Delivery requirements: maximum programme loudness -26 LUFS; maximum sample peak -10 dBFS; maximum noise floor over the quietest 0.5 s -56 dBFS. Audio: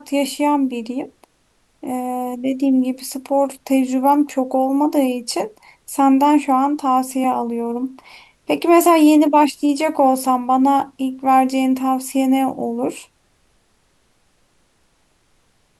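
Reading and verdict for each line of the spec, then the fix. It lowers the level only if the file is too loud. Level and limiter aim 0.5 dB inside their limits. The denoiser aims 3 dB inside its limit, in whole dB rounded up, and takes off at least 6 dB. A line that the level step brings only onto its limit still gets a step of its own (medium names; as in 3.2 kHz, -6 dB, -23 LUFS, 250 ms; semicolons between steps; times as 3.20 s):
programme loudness -17.5 LUFS: fail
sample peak -4.5 dBFS: fail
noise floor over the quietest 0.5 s -61 dBFS: pass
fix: trim -9 dB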